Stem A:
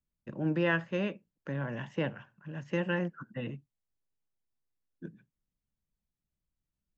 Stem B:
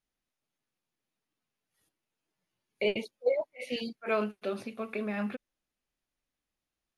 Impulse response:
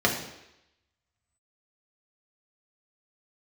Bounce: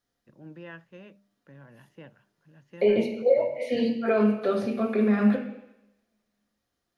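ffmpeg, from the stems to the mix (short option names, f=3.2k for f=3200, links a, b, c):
-filter_complex "[0:a]volume=-15dB[a];[1:a]acrossover=split=2600[b][c];[c]acompressor=threshold=-51dB:ratio=4:attack=1:release=60[d];[b][d]amix=inputs=2:normalize=0,alimiter=limit=-23.5dB:level=0:latency=1,volume=0.5dB,asplit=2[e][f];[f]volume=-8dB[g];[2:a]atrim=start_sample=2205[h];[g][h]afir=irnorm=-1:irlink=0[i];[a][e][i]amix=inputs=3:normalize=0,bandreject=f=200:t=h:w=4,bandreject=f=400:t=h:w=4,bandreject=f=600:t=h:w=4"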